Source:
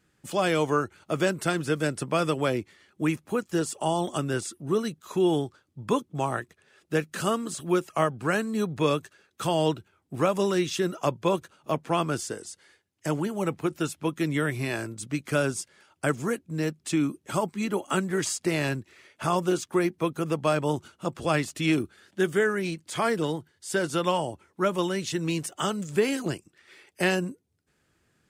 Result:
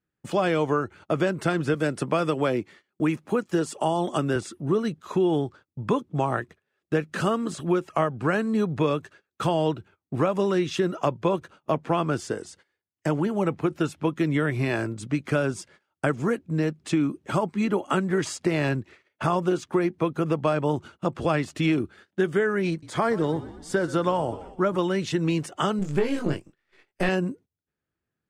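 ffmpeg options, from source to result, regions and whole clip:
-filter_complex "[0:a]asettb=1/sr,asplit=3[a][b][c];[a]atrim=end=1.744[d];[b]atrim=start=1.74:end=4.36,asetpts=PTS-STARTPTS,afade=t=in:d=0.004:c=qsin,afade=t=out:st=2.616:d=0.004:c=qsin,highpass=130,highshelf=f=5.7k:g=4.5[e];[c]atrim=start=4.356[f];[d][e]acrossfade=d=0.004:c1=hsin:c2=qsin[g];[g][f]acrossfade=d=0.004:c1=qsin:c2=hsin,asettb=1/sr,asplit=3[h][i][j];[h]atrim=end=22.704[k];[i]atrim=start=22.7:end=24.77,asetpts=PTS-STARTPTS,afade=t=in:d=0.004:c=qsin,afade=t=out:st=2.066:d=0.004:c=qsin,equalizer=f=2.7k:w=2.8:g=-7.5,asplit=6[l][m][n][o][p][q];[m]adelay=123,afreqshift=-44,volume=-18dB[r];[n]adelay=246,afreqshift=-88,volume=-23.2dB[s];[o]adelay=369,afreqshift=-132,volume=-28.4dB[t];[p]adelay=492,afreqshift=-176,volume=-33.6dB[u];[q]adelay=615,afreqshift=-220,volume=-38.8dB[v];[l][r][s][t][u][v]amix=inputs=6:normalize=0,atrim=end_sample=91287[w];[j]atrim=start=24.766[x];[k][w]acrossfade=d=0.004:c1=hsin:c2=qsin[y];[y][x]acrossfade=d=0.004:c1=qsin:c2=hsin,asettb=1/sr,asplit=3[z][aa][ab];[z]atrim=end=25.794[ac];[aa]atrim=start=25.79:end=27.09,asetpts=PTS-STARTPTS,afade=t=in:d=0.004:c=qsin,afade=t=out:st=1.296:d=0.004:c=qsin,aeval=exprs='if(lt(val(0),0),0.447*val(0),val(0))':c=same,asplit=2[ad][ae];[ae]adelay=21,volume=-3dB[af];[ad][af]amix=inputs=2:normalize=0,atrim=end_sample=57330[ag];[ab]atrim=start=27.086[ah];[ac][ag]acrossfade=d=0.004:c1=hsin:c2=qsin[ai];[ai][ah]acrossfade=d=0.004:c1=qsin:c2=hsin,agate=range=-22dB:threshold=-50dB:ratio=16:detection=peak,aemphasis=mode=reproduction:type=75kf,acompressor=threshold=-27dB:ratio=3,volume=6.5dB"

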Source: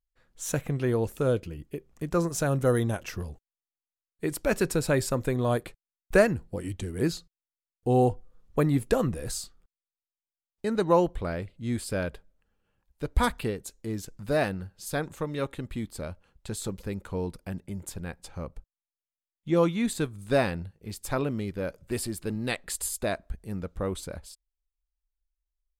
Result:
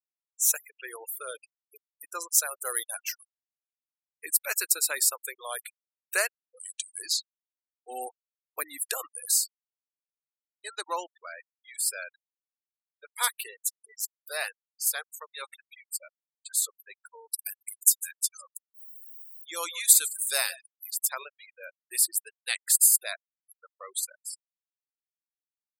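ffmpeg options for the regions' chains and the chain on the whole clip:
-filter_complex "[0:a]asettb=1/sr,asplit=3[a][b][c];[a]atrim=end=6.274[d];[b]atrim=start=6.27:end=7.89,asetpts=PTS-STARTPTS,afade=t=in:d=0.004:c=qsin,afade=t=out:st=1.616:d=0.004:c=qsin,adynamicequalizer=threshold=0.002:dfrequency=4900:dqfactor=1:tfrequency=4900:tqfactor=1:attack=5:release=100:ratio=0.375:range=4:mode=boostabove:tftype=bell,acompressor=threshold=-29dB:ratio=2.5:attack=3.2:release=140:knee=1:detection=peak[e];[c]atrim=start=7.886[f];[d][e]acrossfade=d=0.004:c1=hsin:c2=qsin[g];[g][f]acrossfade=d=0.004:c1=qsin:c2=hsin,asettb=1/sr,asplit=3[h][i][j];[h]atrim=end=17.214[k];[i]atrim=start=17.21:end=20.91,asetpts=PTS-STARTPTS,afade=t=in:d=0.004:c=qsin,afade=t=out:st=3.696:d=0.004:c=qsin,bass=f=250:g=-11,treble=f=4k:g=9,acompressor=mode=upward:threshold=-33dB:ratio=2.5:attack=3.2:release=140:knee=2.83:detection=peak,aecho=1:1:151:0.158,atrim=end_sample=163170[l];[j]atrim=start=20.906[m];[k][l]acrossfade=d=0.004:c1=hsin:c2=qsin[n];[n][m]acrossfade=d=0.004:c1=qsin:c2=hsin,highpass=1.2k,aemphasis=mode=production:type=75fm,afftfilt=real='re*gte(hypot(re,im),0.02)':imag='im*gte(hypot(re,im),0.02)':win_size=1024:overlap=0.75"

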